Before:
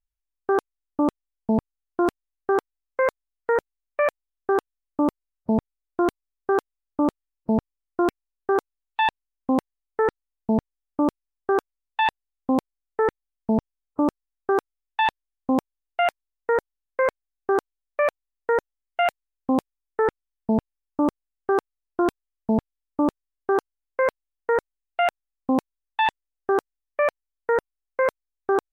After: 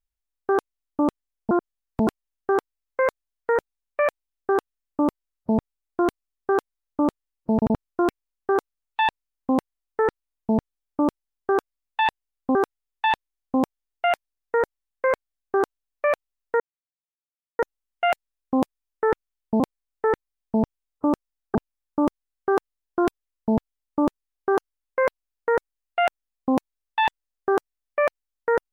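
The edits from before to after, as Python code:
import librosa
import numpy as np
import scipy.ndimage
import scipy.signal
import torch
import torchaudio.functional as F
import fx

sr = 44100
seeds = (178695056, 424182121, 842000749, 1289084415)

y = fx.edit(x, sr, fx.reverse_span(start_s=1.51, length_s=0.56),
    fx.stutter_over(start_s=7.54, slice_s=0.08, count=3),
    fx.move(start_s=12.55, length_s=1.95, to_s=20.56),
    fx.insert_silence(at_s=18.55, length_s=0.99), tone=tone)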